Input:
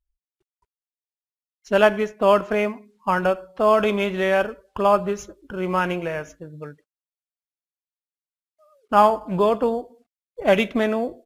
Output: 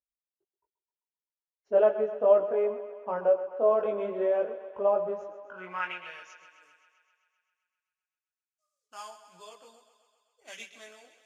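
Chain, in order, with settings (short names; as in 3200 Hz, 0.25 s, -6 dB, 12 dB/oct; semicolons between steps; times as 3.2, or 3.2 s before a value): chorus voices 4, 0.33 Hz, delay 20 ms, depth 3.4 ms; band-pass sweep 530 Hz -> 6800 Hz, 5.06–6.56; thinning echo 0.13 s, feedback 70%, high-pass 290 Hz, level -12.5 dB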